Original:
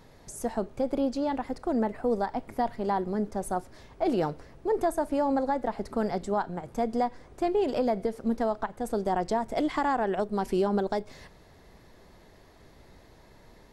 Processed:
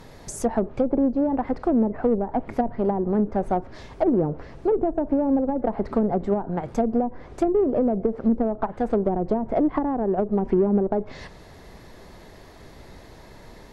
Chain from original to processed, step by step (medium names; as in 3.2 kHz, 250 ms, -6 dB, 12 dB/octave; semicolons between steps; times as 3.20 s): low-pass that closes with the level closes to 430 Hz, closed at -23.5 dBFS; in parallel at -7.5 dB: saturation -28.5 dBFS, distortion -11 dB; on the sum: trim +6 dB